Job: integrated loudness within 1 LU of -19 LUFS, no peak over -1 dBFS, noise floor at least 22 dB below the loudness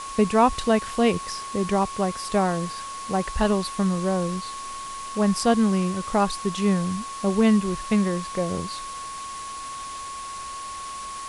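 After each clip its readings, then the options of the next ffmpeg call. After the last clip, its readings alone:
steady tone 1100 Hz; tone level -33 dBFS; noise floor -35 dBFS; noise floor target -47 dBFS; loudness -25.0 LUFS; peak -7.0 dBFS; loudness target -19.0 LUFS
-> -af "bandreject=f=1.1k:w=30"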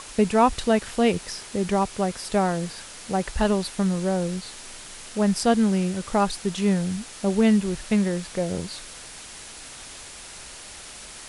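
steady tone none; noise floor -42 dBFS; noise floor target -46 dBFS
-> -af "afftdn=nr=6:nf=-42"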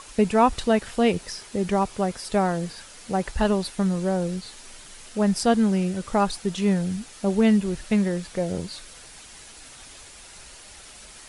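noise floor -46 dBFS; loudness -24.0 LUFS; peak -8.0 dBFS; loudness target -19.0 LUFS
-> -af "volume=5dB"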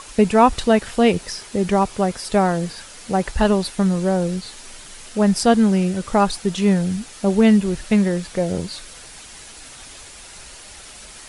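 loudness -19.0 LUFS; peak -3.0 dBFS; noise floor -41 dBFS

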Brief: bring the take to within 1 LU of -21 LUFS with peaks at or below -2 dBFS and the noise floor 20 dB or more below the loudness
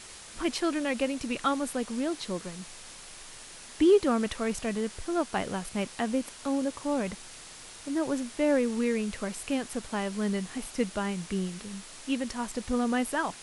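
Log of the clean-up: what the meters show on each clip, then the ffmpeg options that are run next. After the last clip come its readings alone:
noise floor -47 dBFS; noise floor target -50 dBFS; loudness -30.0 LUFS; peak -12.5 dBFS; loudness target -21.0 LUFS
-> -af "afftdn=nr=6:nf=-47"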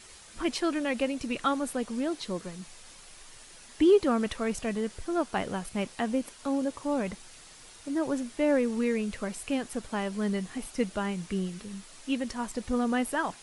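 noise floor -51 dBFS; loudness -30.0 LUFS; peak -12.5 dBFS; loudness target -21.0 LUFS
-> -af "volume=9dB"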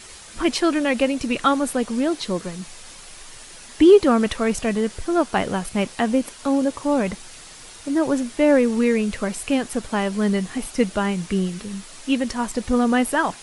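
loudness -21.0 LUFS; peak -3.5 dBFS; noise floor -42 dBFS

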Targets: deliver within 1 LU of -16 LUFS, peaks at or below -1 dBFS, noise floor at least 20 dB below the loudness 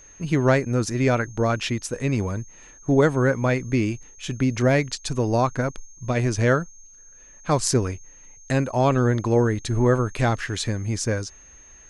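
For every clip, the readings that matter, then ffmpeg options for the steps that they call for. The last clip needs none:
steady tone 6400 Hz; tone level -47 dBFS; loudness -23.0 LUFS; peak -4.5 dBFS; loudness target -16.0 LUFS
-> -af "bandreject=f=6.4k:w=30"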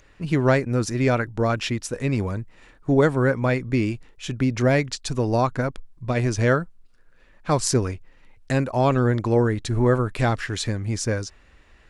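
steady tone none; loudness -23.0 LUFS; peak -4.5 dBFS; loudness target -16.0 LUFS
-> -af "volume=7dB,alimiter=limit=-1dB:level=0:latency=1"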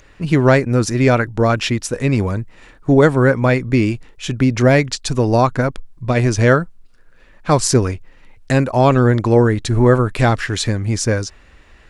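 loudness -16.0 LUFS; peak -1.0 dBFS; noise floor -47 dBFS

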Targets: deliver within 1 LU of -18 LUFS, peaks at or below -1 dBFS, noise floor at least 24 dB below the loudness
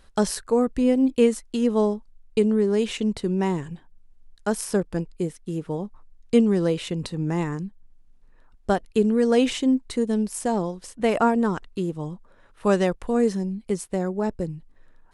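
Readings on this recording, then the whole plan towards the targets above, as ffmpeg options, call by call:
loudness -24.0 LUFS; peak -6.0 dBFS; loudness target -18.0 LUFS
-> -af "volume=6dB,alimiter=limit=-1dB:level=0:latency=1"

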